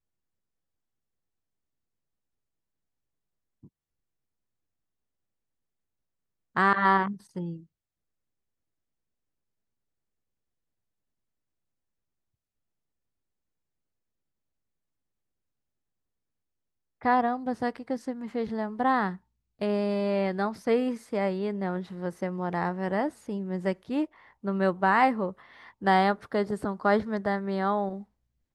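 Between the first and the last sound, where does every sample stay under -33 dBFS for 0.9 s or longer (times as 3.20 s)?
7.54–17.05 s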